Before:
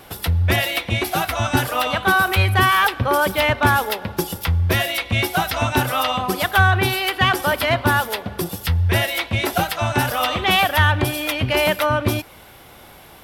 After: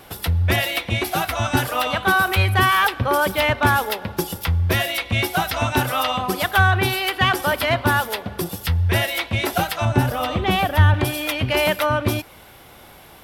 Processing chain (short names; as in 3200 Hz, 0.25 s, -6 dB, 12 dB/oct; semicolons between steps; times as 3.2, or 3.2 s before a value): 9.85–10.94 tilt shelf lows +6.5 dB, about 630 Hz; gain -1 dB